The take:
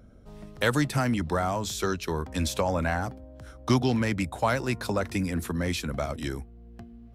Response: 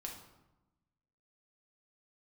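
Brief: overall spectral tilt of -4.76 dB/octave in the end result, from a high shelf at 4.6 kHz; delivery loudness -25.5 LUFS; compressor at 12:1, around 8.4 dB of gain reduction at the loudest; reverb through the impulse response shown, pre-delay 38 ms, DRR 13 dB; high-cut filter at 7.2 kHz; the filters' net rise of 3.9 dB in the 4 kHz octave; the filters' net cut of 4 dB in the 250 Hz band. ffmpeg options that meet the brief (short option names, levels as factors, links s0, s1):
-filter_complex "[0:a]lowpass=7200,equalizer=f=250:t=o:g=-5,equalizer=f=4000:t=o:g=7,highshelf=f=4600:g=-3.5,acompressor=threshold=0.0447:ratio=12,asplit=2[s0][s1];[1:a]atrim=start_sample=2205,adelay=38[s2];[s1][s2]afir=irnorm=-1:irlink=0,volume=0.299[s3];[s0][s3]amix=inputs=2:normalize=0,volume=2.37"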